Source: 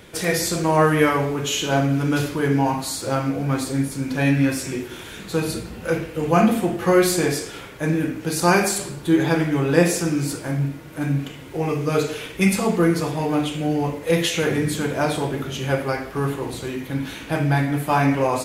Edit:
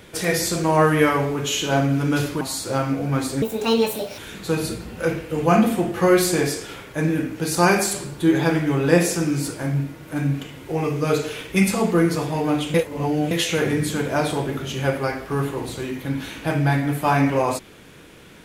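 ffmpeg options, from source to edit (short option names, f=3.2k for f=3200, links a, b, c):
-filter_complex "[0:a]asplit=6[a][b][c][d][e][f];[a]atrim=end=2.412[g];[b]atrim=start=2.778:end=3.794[h];[c]atrim=start=3.79:end=5.03,asetpts=PTS-STARTPTS,asetrate=71883,aresample=44100,atrim=end_sample=33548,asetpts=PTS-STARTPTS[i];[d]atrim=start=5.026:end=13.592[j];[e]atrim=start=13.588:end=14.162,asetpts=PTS-STARTPTS,areverse[k];[f]atrim=start=14.158[l];[g][h]acrossfade=d=0.004:c1=hsin:c2=hsin[m];[m][i]acrossfade=d=0.004:c1=hsin:c2=hsin[n];[n][j]acrossfade=d=0.004:c1=hsin:c2=hsin[o];[o][k]acrossfade=d=0.004:c1=hsin:c2=hsin[p];[p][l]acrossfade=d=0.004:c1=hsin:c2=hsin"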